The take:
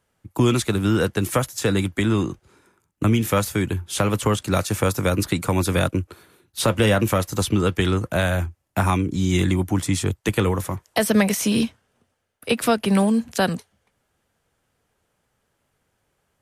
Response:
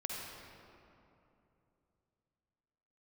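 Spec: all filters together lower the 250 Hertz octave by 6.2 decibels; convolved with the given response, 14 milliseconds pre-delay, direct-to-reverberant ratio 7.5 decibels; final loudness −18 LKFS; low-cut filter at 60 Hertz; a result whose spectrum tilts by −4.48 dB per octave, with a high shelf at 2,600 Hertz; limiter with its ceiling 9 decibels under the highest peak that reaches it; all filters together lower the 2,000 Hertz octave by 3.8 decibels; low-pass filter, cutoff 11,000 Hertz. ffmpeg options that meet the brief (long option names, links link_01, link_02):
-filter_complex "[0:a]highpass=60,lowpass=11000,equalizer=frequency=250:width_type=o:gain=-8.5,equalizer=frequency=2000:width_type=o:gain=-7.5,highshelf=frequency=2600:gain=5,alimiter=limit=-16.5dB:level=0:latency=1,asplit=2[link_01][link_02];[1:a]atrim=start_sample=2205,adelay=14[link_03];[link_02][link_03]afir=irnorm=-1:irlink=0,volume=-9dB[link_04];[link_01][link_04]amix=inputs=2:normalize=0,volume=8.5dB"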